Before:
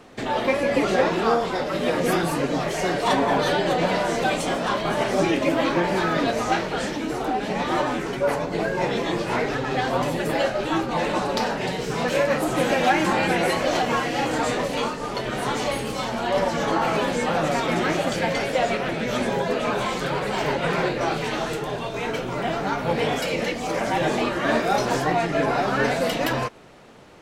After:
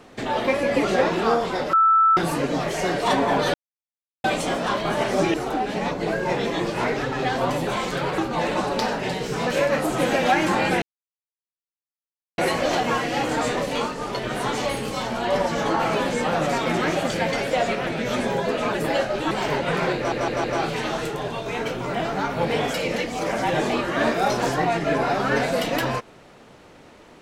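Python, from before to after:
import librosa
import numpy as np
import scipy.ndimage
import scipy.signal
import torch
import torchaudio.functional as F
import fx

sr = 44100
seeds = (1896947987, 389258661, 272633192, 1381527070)

y = fx.edit(x, sr, fx.bleep(start_s=1.73, length_s=0.44, hz=1320.0, db=-13.0),
    fx.silence(start_s=3.54, length_s=0.7),
    fx.cut(start_s=5.34, length_s=1.74),
    fx.cut(start_s=7.65, length_s=0.78),
    fx.swap(start_s=10.19, length_s=0.57, other_s=19.76, other_length_s=0.51),
    fx.insert_silence(at_s=13.4, length_s=1.56),
    fx.stutter(start_s=20.92, slice_s=0.16, count=4), tone=tone)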